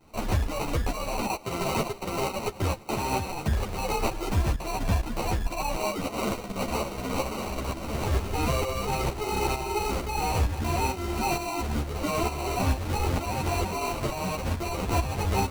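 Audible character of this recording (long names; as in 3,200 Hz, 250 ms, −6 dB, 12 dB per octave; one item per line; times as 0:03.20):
tremolo saw up 2.2 Hz, depth 65%
aliases and images of a low sample rate 1,700 Hz, jitter 0%
a shimmering, thickened sound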